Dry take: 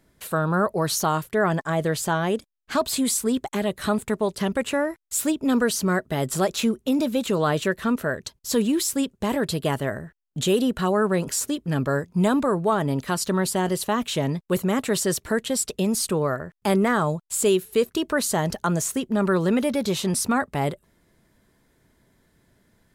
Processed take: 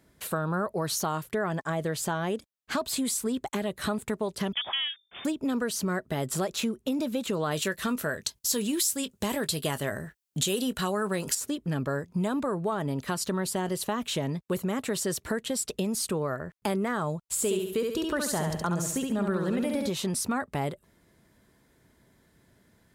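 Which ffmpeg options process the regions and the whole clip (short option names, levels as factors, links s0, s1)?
-filter_complex "[0:a]asettb=1/sr,asplit=3[s0][s1][s2];[s0]atrim=end=4.534[s3];[s1]atrim=start=4.53:end=5.25,asetpts=PTS-STARTPTS,afade=t=in:d=0.004:c=qsin,afade=t=out:st=0.716:d=0.004:c=qsin,bandreject=f=50:t=h:w=6,bandreject=f=100:t=h:w=6,bandreject=f=150:t=h:w=6,bandreject=f=200:t=h:w=6,bandreject=f=250:t=h:w=6,aeval=exprs='clip(val(0),-1,0.0668)':c=same,lowpass=f=3100:t=q:w=0.5098,lowpass=f=3100:t=q:w=0.6013,lowpass=f=3100:t=q:w=0.9,lowpass=f=3100:t=q:w=2.563,afreqshift=-3600[s4];[s2]atrim=start=5.246[s5];[s3][s4]acrossfade=d=0.004:c1=hsin:c2=qsin[s6];[s6][s5]acrossfade=d=0.004:c1=qsin:c2=hsin,asettb=1/sr,asplit=3[s7][s8][s9];[s7]atrim=end=7.514[s10];[s8]atrim=start=7.51:end=11.35,asetpts=PTS-STARTPTS,afade=t=in:d=0.004:c=qsin,afade=t=out:st=3.836:d=0.004:c=qsin,highshelf=f=2800:g=11.5,asplit=2[s11][s12];[s12]adelay=20,volume=0.211[s13];[s11][s13]amix=inputs=2:normalize=0,atrim=end_sample=169344[s14];[s9]atrim=start=11.346[s15];[s10][s14]acrossfade=d=0.004:c1=hsin:c2=qsin[s16];[s16][s15]acrossfade=d=0.004:c1=qsin:c2=hsin,asettb=1/sr,asplit=3[s17][s18][s19];[s17]atrim=end=17.224[s20];[s18]atrim=start=17.22:end=19.9,asetpts=PTS-STARTPTS,afade=t=in:d=0.004:c=qsin,afade=t=out:st=2.676:d=0.004:c=qsin,lowshelf=f=66:g=10,aecho=1:1:69|138|207|276|345:0.631|0.24|0.0911|0.0346|0.0132,atrim=end_sample=118188[s21];[s19]atrim=start=19.896[s22];[s20][s21]acrossfade=d=0.004:c1=hsin:c2=qsin[s23];[s23][s22]acrossfade=d=0.004:c1=qsin:c2=hsin,highpass=42,acompressor=threshold=0.0398:ratio=3"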